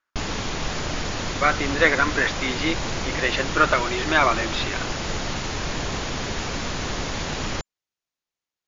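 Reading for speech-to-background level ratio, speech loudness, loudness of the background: 5.5 dB, -22.5 LUFS, -28.0 LUFS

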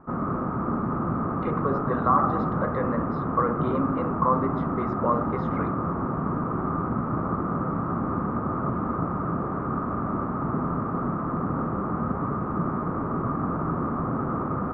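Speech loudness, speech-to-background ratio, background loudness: -28.0 LUFS, 0.0 dB, -28.0 LUFS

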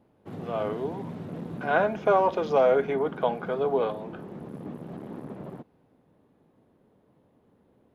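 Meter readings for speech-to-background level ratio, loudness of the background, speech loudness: 13.5 dB, -39.5 LUFS, -26.0 LUFS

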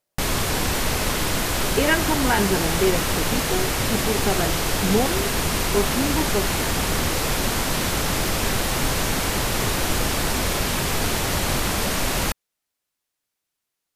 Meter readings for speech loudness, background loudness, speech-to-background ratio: -26.0 LUFS, -22.5 LUFS, -3.5 dB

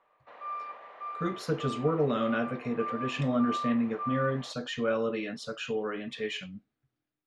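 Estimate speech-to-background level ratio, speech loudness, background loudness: 7.5 dB, -31.5 LUFS, -39.0 LUFS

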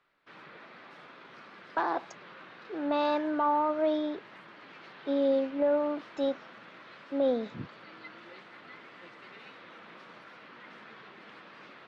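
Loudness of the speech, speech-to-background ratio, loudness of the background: -30.0 LUFS, 19.5 dB, -49.5 LUFS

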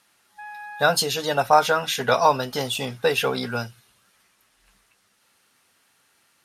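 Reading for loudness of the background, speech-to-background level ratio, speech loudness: -39.5 LUFS, 17.5 dB, -22.0 LUFS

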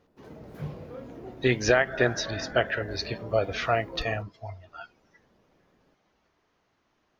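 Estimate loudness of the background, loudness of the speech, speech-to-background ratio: -43.0 LUFS, -27.0 LUFS, 16.0 dB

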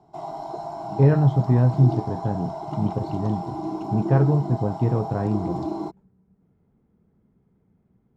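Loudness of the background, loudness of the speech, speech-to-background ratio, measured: -32.0 LUFS, -22.5 LUFS, 9.5 dB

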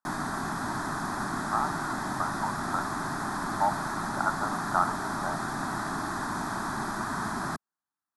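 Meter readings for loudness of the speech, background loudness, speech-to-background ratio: -33.0 LUFS, -32.0 LUFS, -1.0 dB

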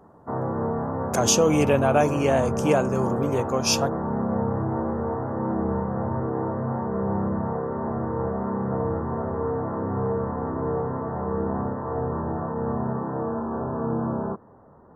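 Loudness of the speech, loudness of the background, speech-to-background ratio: -23.0 LUFS, -27.5 LUFS, 4.5 dB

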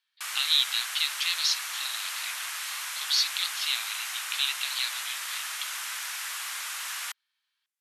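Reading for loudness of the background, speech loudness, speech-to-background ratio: -32.5 LUFS, -28.0 LUFS, 4.5 dB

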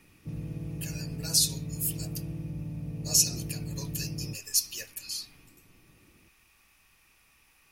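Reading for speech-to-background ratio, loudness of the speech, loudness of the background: 9.0 dB, -29.0 LUFS, -38.0 LUFS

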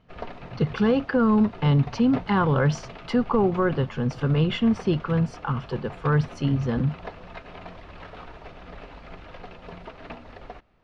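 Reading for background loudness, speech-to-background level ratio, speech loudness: -42.0 LUFS, 18.0 dB, -24.0 LUFS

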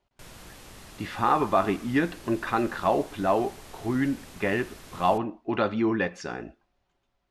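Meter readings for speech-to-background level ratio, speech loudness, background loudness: 19.5 dB, -27.0 LUFS, -46.5 LUFS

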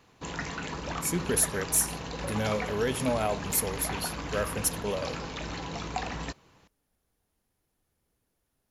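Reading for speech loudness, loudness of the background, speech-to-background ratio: -29.5 LUFS, -36.0 LUFS, 6.5 dB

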